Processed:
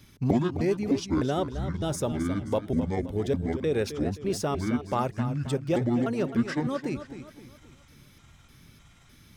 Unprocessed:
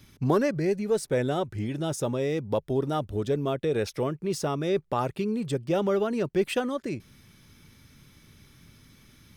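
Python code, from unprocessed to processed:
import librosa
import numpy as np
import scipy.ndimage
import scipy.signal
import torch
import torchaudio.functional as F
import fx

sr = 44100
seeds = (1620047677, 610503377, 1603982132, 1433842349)

y = fx.pitch_trill(x, sr, semitones=-8.5, every_ms=303)
y = fx.echo_warbled(y, sr, ms=264, feedback_pct=41, rate_hz=2.8, cents=103, wet_db=-11.0)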